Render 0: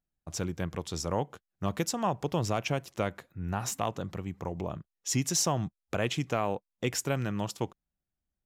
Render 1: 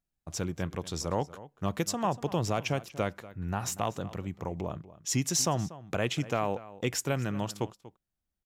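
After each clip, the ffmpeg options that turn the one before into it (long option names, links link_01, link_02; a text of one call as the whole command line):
ffmpeg -i in.wav -filter_complex "[0:a]asplit=2[link_01][link_02];[link_02]adelay=239.1,volume=-17dB,highshelf=frequency=4000:gain=-5.38[link_03];[link_01][link_03]amix=inputs=2:normalize=0" out.wav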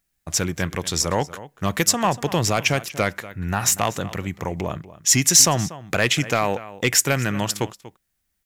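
ffmpeg -i in.wav -filter_complex "[0:a]equalizer=frequency=1900:width=1.6:gain=8,asplit=2[link_01][link_02];[link_02]aeval=exprs='0.266*sin(PI/2*1.58*val(0)/0.266)':channel_layout=same,volume=-4.5dB[link_03];[link_01][link_03]amix=inputs=2:normalize=0,highshelf=frequency=4000:gain=10.5" out.wav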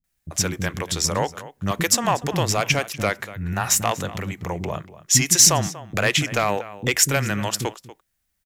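ffmpeg -i in.wav -filter_complex "[0:a]acrossover=split=290[link_01][link_02];[link_02]adelay=40[link_03];[link_01][link_03]amix=inputs=2:normalize=0" out.wav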